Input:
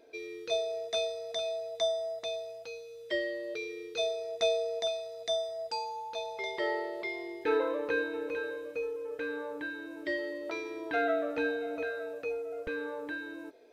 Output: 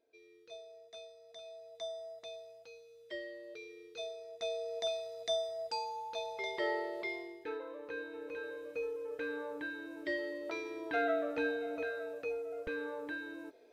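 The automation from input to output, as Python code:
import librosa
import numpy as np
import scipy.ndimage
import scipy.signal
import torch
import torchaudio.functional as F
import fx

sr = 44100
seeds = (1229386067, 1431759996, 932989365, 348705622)

y = fx.gain(x, sr, db=fx.line((1.17, -19.0), (1.97, -11.0), (4.41, -11.0), (4.92, -2.5), (7.13, -2.5), (7.6, -15.0), (8.83, -3.0)))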